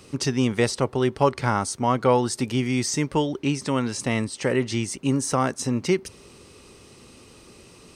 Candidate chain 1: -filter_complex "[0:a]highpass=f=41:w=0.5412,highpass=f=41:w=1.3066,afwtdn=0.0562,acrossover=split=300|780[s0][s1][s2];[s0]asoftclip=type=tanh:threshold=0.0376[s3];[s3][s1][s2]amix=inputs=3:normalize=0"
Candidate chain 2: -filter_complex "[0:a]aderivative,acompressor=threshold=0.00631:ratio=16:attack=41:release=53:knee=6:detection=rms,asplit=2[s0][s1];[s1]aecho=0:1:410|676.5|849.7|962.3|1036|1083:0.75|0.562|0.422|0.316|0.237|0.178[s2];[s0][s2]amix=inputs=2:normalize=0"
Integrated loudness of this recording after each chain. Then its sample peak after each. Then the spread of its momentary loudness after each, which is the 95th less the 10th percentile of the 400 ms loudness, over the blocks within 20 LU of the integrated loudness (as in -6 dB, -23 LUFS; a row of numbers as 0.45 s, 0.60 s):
-27.0 LUFS, -41.0 LUFS; -7.0 dBFS, -24.5 dBFS; 7 LU, 7 LU